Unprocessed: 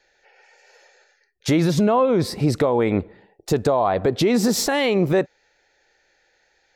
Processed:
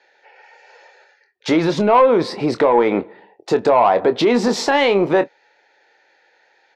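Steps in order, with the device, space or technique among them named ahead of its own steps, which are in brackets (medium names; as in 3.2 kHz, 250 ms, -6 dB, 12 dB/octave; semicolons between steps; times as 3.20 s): intercom (band-pass 300–3800 Hz; peaking EQ 930 Hz +7 dB 0.31 oct; saturation -11 dBFS, distortion -19 dB; doubling 25 ms -11 dB); trim +6 dB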